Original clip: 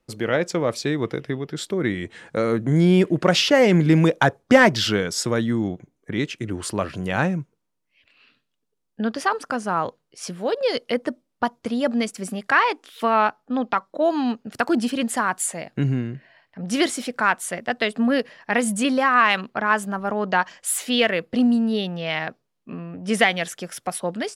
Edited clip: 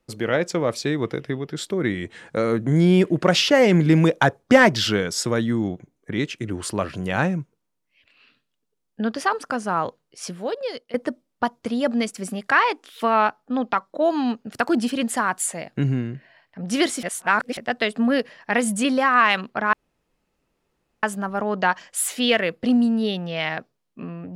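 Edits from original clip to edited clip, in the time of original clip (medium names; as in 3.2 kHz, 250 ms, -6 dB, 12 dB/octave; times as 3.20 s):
10.25–10.94 s: fade out, to -20 dB
17.03–17.57 s: reverse
19.73 s: insert room tone 1.30 s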